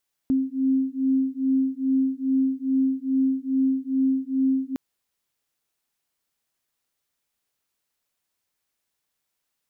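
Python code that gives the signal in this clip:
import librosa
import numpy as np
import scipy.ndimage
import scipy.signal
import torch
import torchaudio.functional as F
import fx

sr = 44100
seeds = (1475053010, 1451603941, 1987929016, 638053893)

y = fx.two_tone_beats(sr, length_s=4.46, hz=264.0, beat_hz=2.4, level_db=-23.0)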